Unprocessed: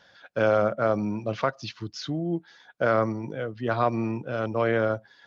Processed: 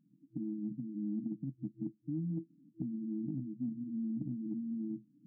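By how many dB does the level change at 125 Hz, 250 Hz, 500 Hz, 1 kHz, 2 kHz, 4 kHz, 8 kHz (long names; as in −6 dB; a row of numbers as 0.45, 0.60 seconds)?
−10.5 dB, −5.5 dB, below −25 dB, below −40 dB, below −40 dB, below −40 dB, can't be measured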